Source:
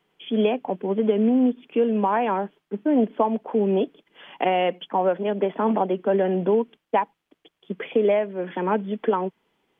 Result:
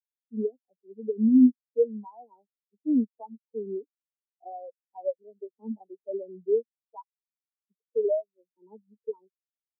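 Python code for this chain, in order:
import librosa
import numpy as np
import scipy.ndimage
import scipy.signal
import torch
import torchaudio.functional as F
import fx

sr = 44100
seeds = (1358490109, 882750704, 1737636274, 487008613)

y = scipy.ndimage.median_filter(x, 15, mode='constant')
y = fx.spectral_expand(y, sr, expansion=4.0)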